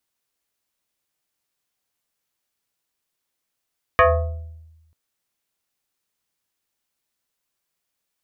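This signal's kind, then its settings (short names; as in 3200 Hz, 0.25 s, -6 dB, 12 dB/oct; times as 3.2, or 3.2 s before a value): FM tone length 0.94 s, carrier 80.1 Hz, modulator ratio 7.32, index 3.2, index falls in 0.93 s exponential, decay 1.12 s, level -8.5 dB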